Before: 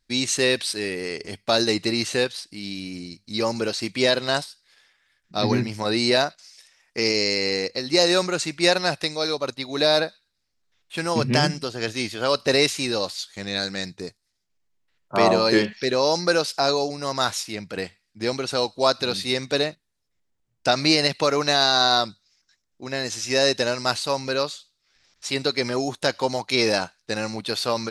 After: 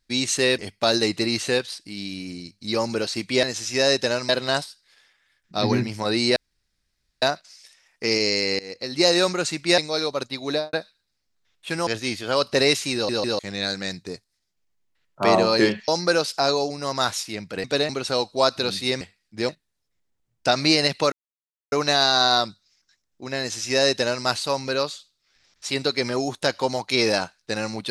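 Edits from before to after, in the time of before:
0.58–1.24 cut
6.16 insert room tone 0.86 s
7.53–7.9 fade in, from -22 dB
8.72–9.05 cut
9.75–10 studio fade out
11.14–11.8 cut
12.87 stutter in place 0.15 s, 3 plays
15.81–16.08 cut
17.84–18.32 swap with 19.44–19.69
21.32 insert silence 0.60 s
22.99–23.85 copy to 4.09

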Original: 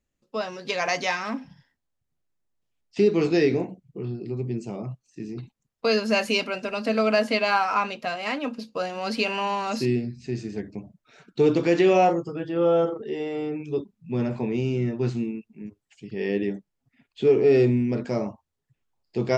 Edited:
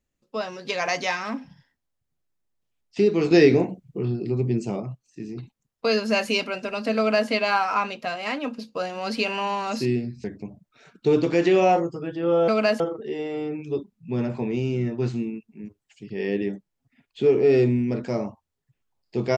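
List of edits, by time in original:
3.31–4.8 gain +5.5 dB
6.97–7.29 copy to 12.81
10.24–10.57 cut

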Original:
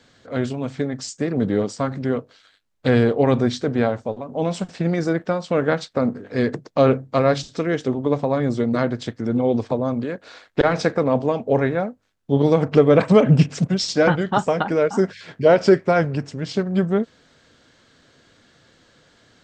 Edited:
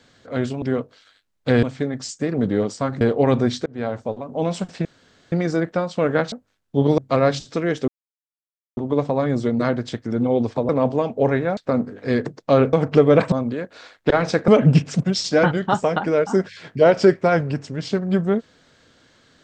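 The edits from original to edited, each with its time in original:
2–3.01 move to 0.62
3.66–4.03 fade in
4.85 insert room tone 0.47 s
5.85–7.01 swap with 11.87–12.53
7.91 insert silence 0.89 s
9.83–10.99 move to 13.12

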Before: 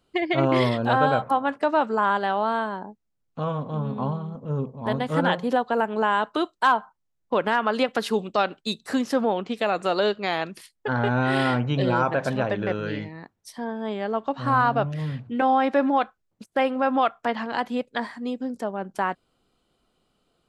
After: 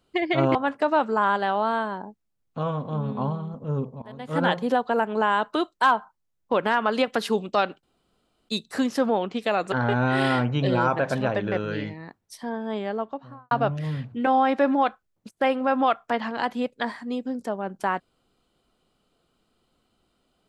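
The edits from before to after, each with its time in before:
0.55–1.36 cut
4.83–5.24 fade in quadratic, from -19.5 dB
8.64 insert room tone 0.66 s
9.87–10.87 cut
13.91–14.66 studio fade out

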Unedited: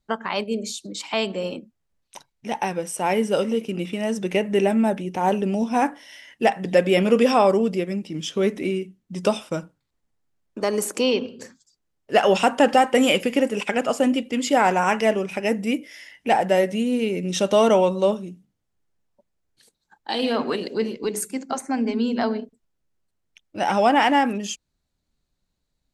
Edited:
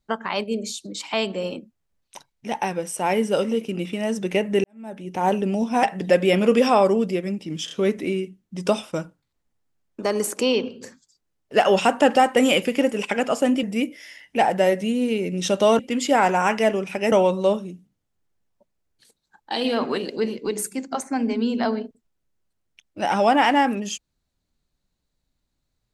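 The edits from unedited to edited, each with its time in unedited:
4.64–5.19 fade in quadratic
5.83–6.47 cut
8.29 stutter 0.03 s, 3 plays
14.21–15.54 move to 17.7

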